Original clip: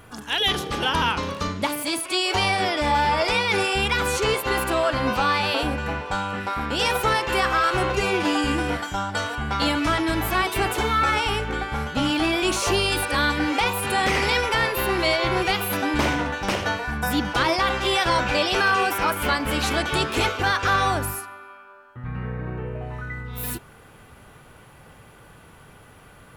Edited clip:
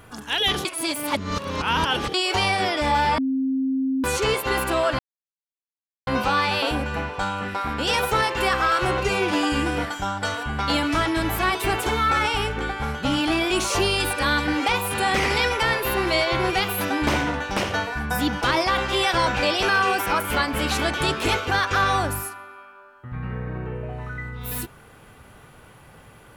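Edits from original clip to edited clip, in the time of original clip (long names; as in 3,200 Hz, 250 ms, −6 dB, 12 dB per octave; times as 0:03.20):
0:00.65–0:02.14: reverse
0:03.18–0:04.04: beep over 265 Hz −20 dBFS
0:04.99: splice in silence 1.08 s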